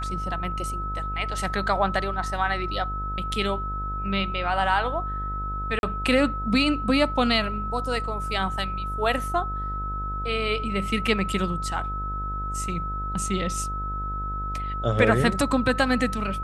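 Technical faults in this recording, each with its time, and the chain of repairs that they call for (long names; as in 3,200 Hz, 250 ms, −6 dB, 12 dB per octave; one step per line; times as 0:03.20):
mains buzz 50 Hz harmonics 26 −32 dBFS
whistle 1,300 Hz −30 dBFS
0:05.79–0:05.83: drop-out 41 ms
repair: hum removal 50 Hz, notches 26
notch filter 1,300 Hz, Q 30
repair the gap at 0:05.79, 41 ms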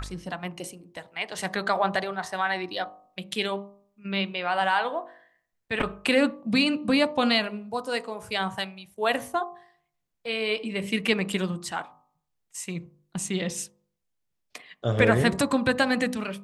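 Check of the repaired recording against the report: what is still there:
none of them is left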